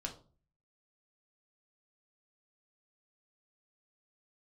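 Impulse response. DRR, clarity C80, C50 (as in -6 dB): 0.5 dB, 16.5 dB, 11.5 dB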